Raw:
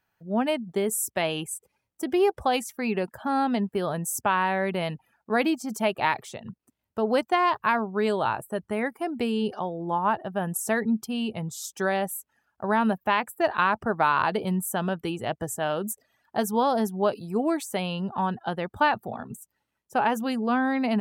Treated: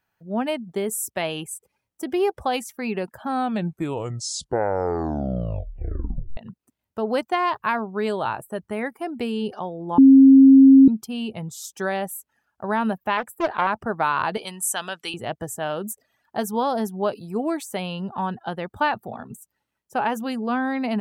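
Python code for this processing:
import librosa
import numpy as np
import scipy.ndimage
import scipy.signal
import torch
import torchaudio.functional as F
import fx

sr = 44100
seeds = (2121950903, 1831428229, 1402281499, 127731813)

y = fx.doppler_dist(x, sr, depth_ms=0.32, at=(13.17, 13.67))
y = fx.weighting(y, sr, curve='ITU-R 468', at=(14.37, 15.14))
y = fx.edit(y, sr, fx.tape_stop(start_s=3.22, length_s=3.15),
    fx.bleep(start_s=9.98, length_s=0.9, hz=269.0, db=-6.5), tone=tone)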